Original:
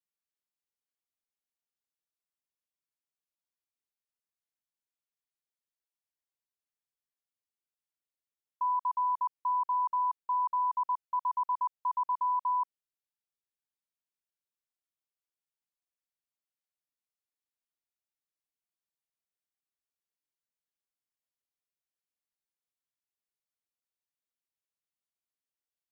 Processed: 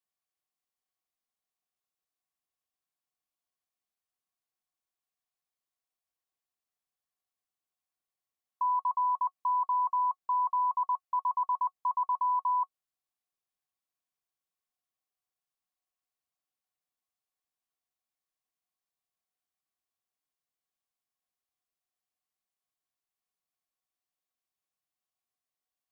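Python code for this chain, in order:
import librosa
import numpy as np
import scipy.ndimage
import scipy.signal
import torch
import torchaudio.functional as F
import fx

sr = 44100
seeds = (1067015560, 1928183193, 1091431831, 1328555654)

y = fx.small_body(x, sr, hz=(740.0, 1100.0), ring_ms=55, db=12)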